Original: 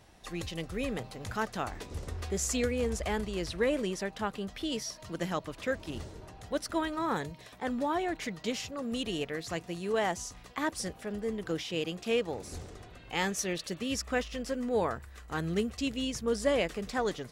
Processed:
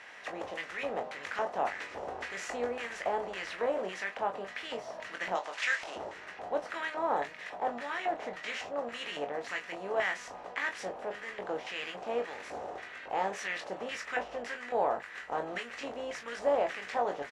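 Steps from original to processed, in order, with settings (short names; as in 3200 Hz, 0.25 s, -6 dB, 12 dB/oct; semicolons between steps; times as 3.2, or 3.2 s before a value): per-bin compression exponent 0.6; 5.35–5.96 weighting filter ITU-R 468; LFO band-pass square 1.8 Hz 750–1900 Hz; early reflections 21 ms -6 dB, 38 ms -13.5 dB; gain +1.5 dB; AAC 64 kbps 44100 Hz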